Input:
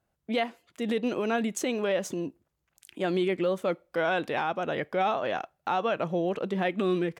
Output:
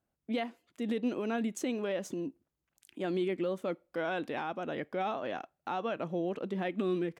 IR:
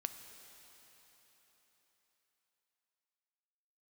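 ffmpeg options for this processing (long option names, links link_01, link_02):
-af "equalizer=frequency=270:width_type=o:width=0.81:gain=7,volume=-8dB"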